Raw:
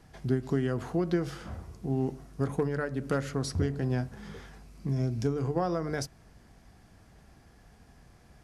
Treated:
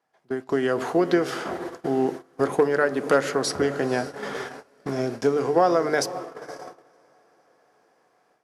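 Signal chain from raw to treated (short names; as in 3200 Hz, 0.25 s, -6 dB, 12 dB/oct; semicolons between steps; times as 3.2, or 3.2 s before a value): in parallel at -2 dB: compressor 12:1, threshold -41 dBFS, peak gain reduction 20 dB; on the sum: HPF 760 Hz 12 dB/oct; tilt shelf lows +7.5 dB, about 1400 Hz; diffused feedback echo 0.526 s, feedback 64%, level -14 dB; AGC gain up to 10 dB; dynamic EQ 990 Hz, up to -6 dB, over -37 dBFS, Q 0.88; gate -36 dBFS, range -23 dB; on a send at -23 dB: reverb RT60 0.35 s, pre-delay 5 ms; on the sum: gain +5.5 dB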